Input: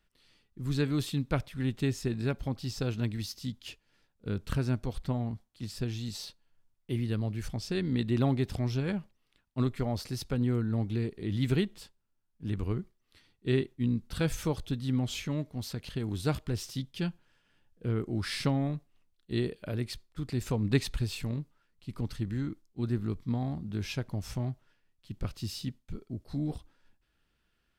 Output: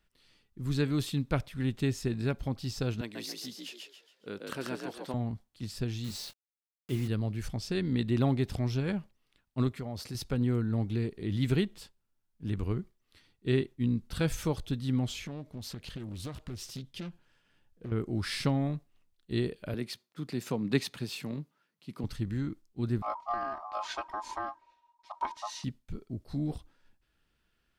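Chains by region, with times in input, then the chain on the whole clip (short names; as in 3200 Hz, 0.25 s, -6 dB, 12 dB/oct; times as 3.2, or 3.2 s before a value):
3.01–5.14 HPF 350 Hz + frequency-shifting echo 0.138 s, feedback 36%, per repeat +54 Hz, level -3 dB
6.04–7.08 requantised 8-bit, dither none + doubler 23 ms -11.5 dB
9.69–10.15 HPF 56 Hz + compressor 2.5:1, threshold -36 dBFS
15.11–17.92 compressor 4:1, threshold -36 dBFS + Doppler distortion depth 0.45 ms
19.74–22.04 HPF 150 Hz 24 dB/oct + bell 7900 Hz -3.5 dB 0.35 oct
23.02–25.64 LPF 6300 Hz + comb 3.2 ms, depth 79% + ring modulator 950 Hz
whole clip: dry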